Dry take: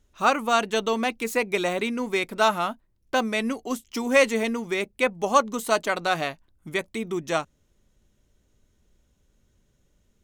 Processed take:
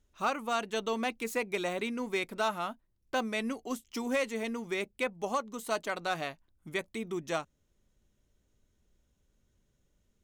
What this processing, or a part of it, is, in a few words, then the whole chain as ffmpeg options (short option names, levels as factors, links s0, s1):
limiter into clipper: -af "alimiter=limit=0.251:level=0:latency=1:release=493,asoftclip=type=hard:threshold=0.188,volume=0.447"